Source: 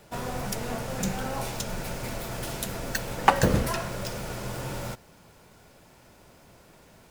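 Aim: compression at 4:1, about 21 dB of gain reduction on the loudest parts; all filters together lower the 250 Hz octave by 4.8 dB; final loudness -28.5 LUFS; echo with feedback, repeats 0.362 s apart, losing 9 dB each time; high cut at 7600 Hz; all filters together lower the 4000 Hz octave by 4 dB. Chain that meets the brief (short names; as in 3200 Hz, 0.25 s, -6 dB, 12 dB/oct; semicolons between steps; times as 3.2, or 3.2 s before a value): LPF 7600 Hz; bell 250 Hz -7 dB; bell 4000 Hz -5 dB; compressor 4:1, threshold -41 dBFS; feedback echo 0.362 s, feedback 35%, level -9 dB; gain +15.5 dB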